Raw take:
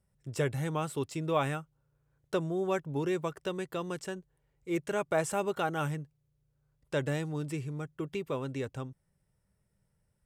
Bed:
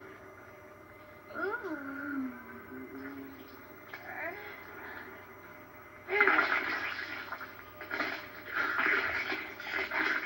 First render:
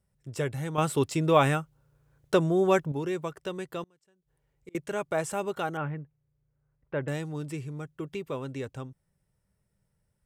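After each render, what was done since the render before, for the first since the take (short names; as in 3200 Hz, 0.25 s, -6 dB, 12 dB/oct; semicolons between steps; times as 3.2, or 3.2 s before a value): 0.78–2.92 gain +8 dB; 3.83–4.75 flipped gate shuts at -33 dBFS, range -30 dB; 5.77–7.08 LPF 2300 Hz 24 dB/oct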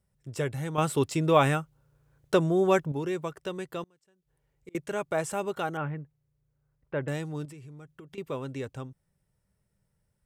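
7.45–8.18 compressor 10:1, threshold -43 dBFS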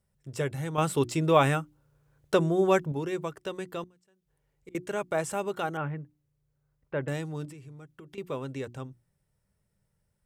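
notches 60/120/180/240/300/360 Hz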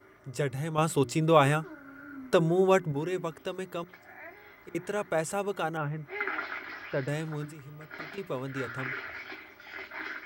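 add bed -7.5 dB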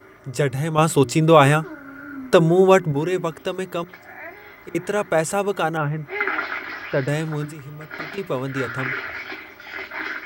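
gain +9.5 dB; limiter -1 dBFS, peak gain reduction 2 dB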